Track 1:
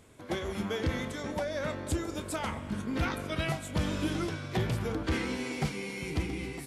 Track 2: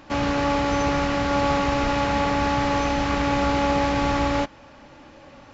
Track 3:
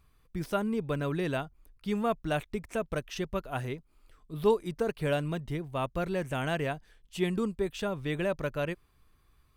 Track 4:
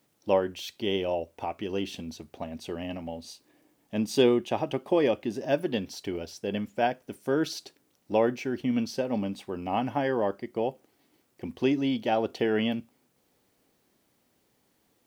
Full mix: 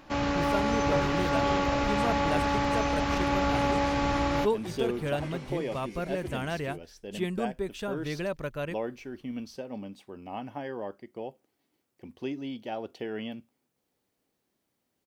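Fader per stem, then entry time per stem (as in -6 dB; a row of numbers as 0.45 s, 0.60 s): -12.0 dB, -5.0 dB, -2.0 dB, -9.5 dB; 0.10 s, 0.00 s, 0.00 s, 0.60 s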